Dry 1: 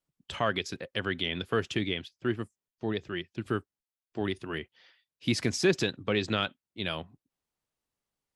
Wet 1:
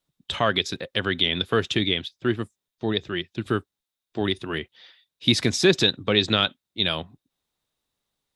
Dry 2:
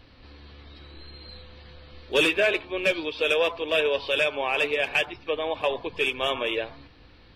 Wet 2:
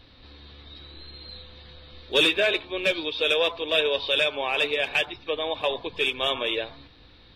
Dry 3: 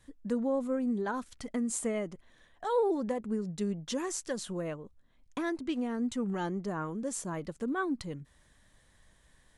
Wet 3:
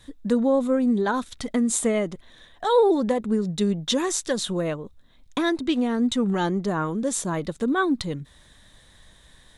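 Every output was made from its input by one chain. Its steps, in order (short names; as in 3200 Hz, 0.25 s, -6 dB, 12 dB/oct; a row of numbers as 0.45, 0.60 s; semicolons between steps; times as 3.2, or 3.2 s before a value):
bell 3700 Hz +11.5 dB 0.23 oct; match loudness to -24 LUFS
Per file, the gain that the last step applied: +6.0, -1.0, +10.0 dB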